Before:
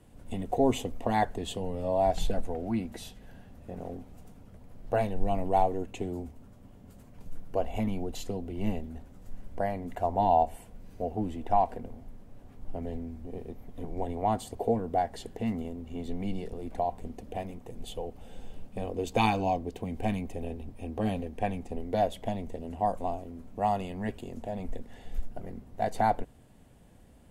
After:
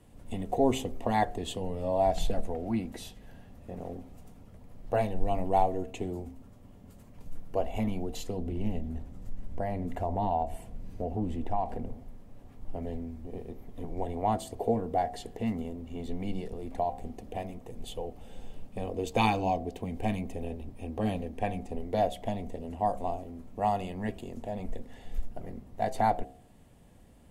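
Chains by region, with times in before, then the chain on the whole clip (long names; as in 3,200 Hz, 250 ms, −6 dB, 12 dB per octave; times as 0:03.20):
0:08.38–0:11.93: low-shelf EQ 320 Hz +7 dB + downward compressor 2 to 1, threshold −29 dBFS + highs frequency-modulated by the lows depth 0.12 ms
whole clip: notch filter 1,500 Hz, Q 15; hum removal 65.57 Hz, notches 12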